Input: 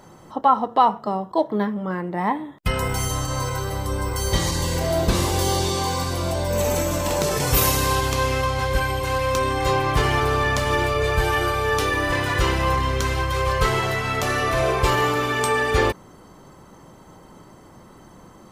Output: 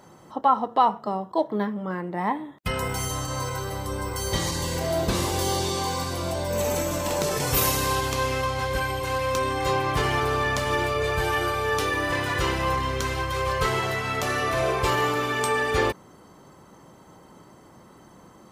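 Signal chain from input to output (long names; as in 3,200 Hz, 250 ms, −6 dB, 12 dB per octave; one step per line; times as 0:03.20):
high-pass filter 92 Hz 6 dB per octave
level −3 dB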